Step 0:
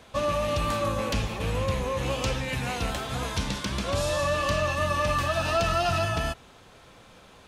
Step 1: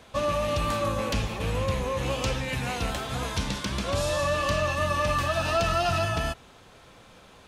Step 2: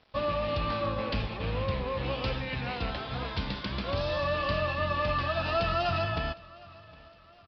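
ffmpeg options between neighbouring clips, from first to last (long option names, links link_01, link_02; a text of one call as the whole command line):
ffmpeg -i in.wav -af anull out.wav
ffmpeg -i in.wav -af "aresample=11025,aeval=exprs='sgn(val(0))*max(abs(val(0))-0.00282,0)':channel_layout=same,aresample=44100,aecho=1:1:761|1522|2283:0.0794|0.0365|0.0168,volume=-3dB" out.wav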